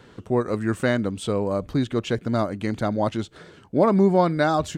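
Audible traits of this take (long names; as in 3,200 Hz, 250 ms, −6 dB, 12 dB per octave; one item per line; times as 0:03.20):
background noise floor −51 dBFS
spectral slope −6.0 dB per octave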